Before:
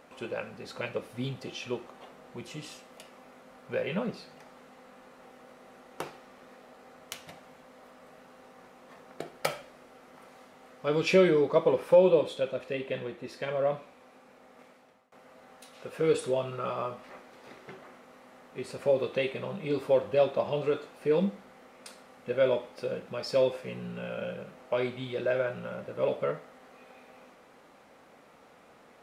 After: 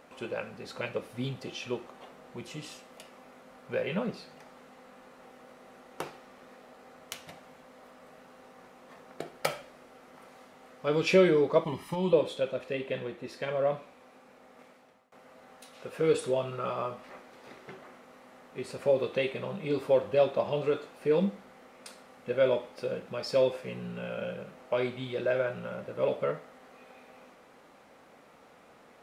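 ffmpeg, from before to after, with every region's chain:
ffmpeg -i in.wav -filter_complex "[0:a]asettb=1/sr,asplit=3[link_01][link_02][link_03];[link_01]atrim=end=11.644[link_04];[link_02]atrim=start=11.64:end=12.13,asetpts=PTS-STARTPTS,afade=type=in:duration=0.004:curve=qsin,afade=type=out:start_time=0.486:duration=0.004:curve=qsin,equalizer=frequency=810:width_type=o:width=2.4:gain=-9,aecho=1:1:1:0.88,atrim=end_sample=21609[link_05];[link_03]atrim=start=12.126[link_06];[link_04][link_05]acrossfade=duration=0.004:curve1=hsin:curve2=qsin[link_07];[link_07][link_06]acrossfade=duration=0.004:curve1=qsin:curve2=hsin" out.wav

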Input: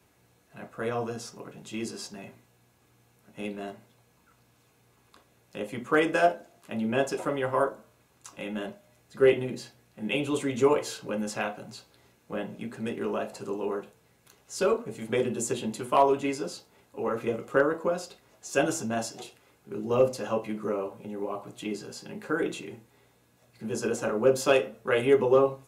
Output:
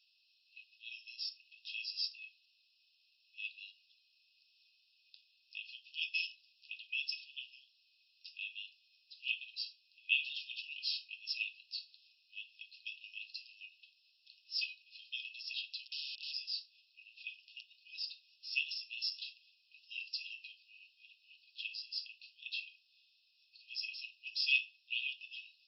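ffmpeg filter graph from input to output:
ffmpeg -i in.wav -filter_complex "[0:a]asettb=1/sr,asplit=3[link_01][link_02][link_03];[link_01]atrim=end=15.854[link_04];[link_02]atrim=start=15.85:end=16.32,asetpts=PTS-STARTPTS,afade=type=in:duration=0.004:curve=qsin,afade=type=out:start_time=0.466:duration=0.004:curve=qsin,highpass=340,lowpass=2500,acompressor=threshold=-32dB:ratio=5:attack=3.2:release=140:knee=1:detection=peak,aeval=exprs='(mod(63.1*val(0)+1,2)-1)/63.1':channel_layout=same[link_05];[link_03]atrim=start=16.316[link_06];[link_04][link_05]acrossfade=duration=0.004:curve1=hsin:curve2=qsin[link_07];[link_07][link_06]acrossfade=duration=0.004:curve1=qsin:curve2=hsin,afftfilt=real='re*between(b*sr/4096,2500,5500)':imag='im*between(b*sr/4096,2500,5500)':win_size=4096:overlap=0.75,equalizer=frequency=3200:width=1.2:gain=-10.5,volume=11dB" out.wav

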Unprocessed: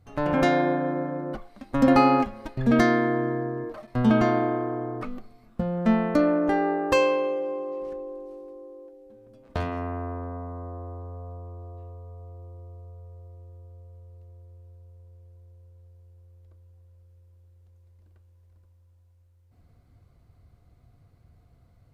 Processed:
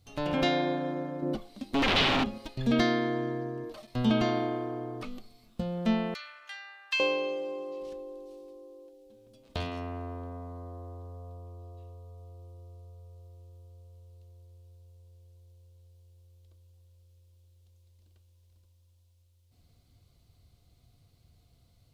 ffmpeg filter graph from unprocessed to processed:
ffmpeg -i in.wav -filter_complex "[0:a]asettb=1/sr,asplit=3[link_01][link_02][link_03];[link_01]atrim=end=1.224[link_04];[link_02]atrim=start=1.22:end=2.38,asetpts=PTS-STARTPTS,afade=type=in:duration=0.004:curve=qsin,afade=type=out:start_time=1.156:duration=0.004:curve=qsin,equalizer=frequency=250:width=0.57:gain=9.5,aeval=exprs='0.168*(abs(mod(val(0)/0.168+3,4)-2)-1)':channel_layout=same[link_05];[link_03]atrim=start=2.376[link_06];[link_04][link_05]acrossfade=duration=0.004:curve1=hsin:curve2=qsin[link_07];[link_07][link_06]acrossfade=duration=0.004:curve1=qsin:curve2=hsin,asettb=1/sr,asplit=3[link_08][link_09][link_10];[link_08]atrim=end=6.144[link_11];[link_09]atrim=start=6.14:end=7,asetpts=PTS-STARTPTS,afade=type=in:duration=0.004:curve=qsin,afade=type=out:start_time=0.856:duration=0.004:curve=qsin,highpass=frequency=1500:width=0.5412,highpass=frequency=1500:width=1.3066,highshelf=frequency=5400:gain=-8[link_12];[link_10]atrim=start=6.996[link_13];[link_11][link_12]acrossfade=duration=0.004:curve1=hsin:curve2=qsin[link_14];[link_14][link_13]acrossfade=duration=0.004:curve1=qsin:curve2=hsin,acrossover=split=4000[link_15][link_16];[link_16]acompressor=threshold=-58dB:ratio=4:attack=1:release=60[link_17];[link_15][link_17]amix=inputs=2:normalize=0,highshelf=frequency=2400:width_type=q:width=1.5:gain=11.5,volume=-5.5dB" out.wav

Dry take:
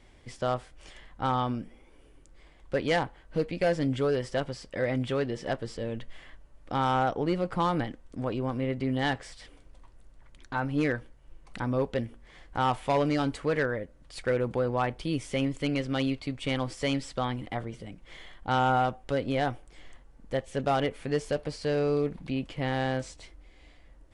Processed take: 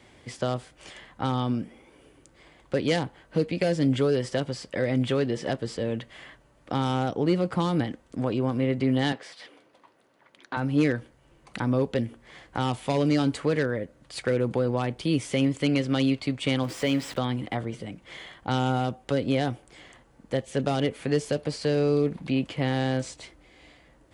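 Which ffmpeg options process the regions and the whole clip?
ffmpeg -i in.wav -filter_complex "[0:a]asettb=1/sr,asplit=3[link_01][link_02][link_03];[link_01]atrim=end=9.124[link_04];[link_02]atrim=start=9.12:end=10.57,asetpts=PTS-STARTPTS,afade=type=in:duration=0.004:curve=qsin,afade=type=out:start_time=1.446:duration=0.004:curve=qsin,highpass=290,equalizer=frequency=8100:width=1.2:gain=-10.5[link_05];[link_03]atrim=start=10.566[link_06];[link_04][link_05]acrossfade=duration=0.004:curve1=hsin:curve2=qsin[link_07];[link_07][link_06]acrossfade=duration=0.004:curve1=qsin:curve2=hsin,asettb=1/sr,asplit=3[link_08][link_09][link_10];[link_08]atrim=end=16.634[link_11];[link_09]atrim=start=16.63:end=17.18,asetpts=PTS-STARTPTS,afade=type=in:duration=0.004:curve=qsin,afade=type=out:start_time=0.546:duration=0.004:curve=qsin,aeval=exprs='val(0)+0.5*0.0126*sgn(val(0))':channel_layout=same,bass=frequency=250:gain=-4,treble=frequency=4000:gain=-8,bandreject=frequency=4400:width=25[link_12];[link_10]atrim=start=17.176[link_13];[link_11][link_12]acrossfade=duration=0.004:curve1=hsin:curve2=qsin[link_14];[link_14][link_13]acrossfade=duration=0.004:curve1=qsin:curve2=hsin,highpass=100,bandreject=frequency=5500:width=29,acrossover=split=420|3000[link_15][link_16][link_17];[link_16]acompressor=threshold=-36dB:ratio=6[link_18];[link_15][link_18][link_17]amix=inputs=3:normalize=0,volume=6dB" out.wav

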